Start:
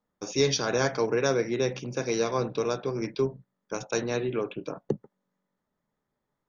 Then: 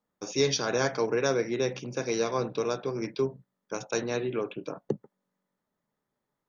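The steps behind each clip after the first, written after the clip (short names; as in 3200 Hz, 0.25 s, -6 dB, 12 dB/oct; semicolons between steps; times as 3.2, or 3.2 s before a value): low shelf 73 Hz -8.5 dB; gain -1 dB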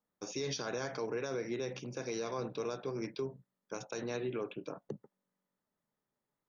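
limiter -22.5 dBFS, peak gain reduction 9.5 dB; gain -5.5 dB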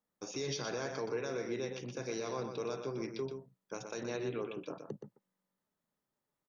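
echo 0.122 s -7 dB; gain -1 dB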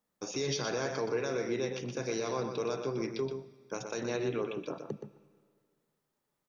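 reverb RT60 1.9 s, pre-delay 40 ms, DRR 18.5 dB; gain +4.5 dB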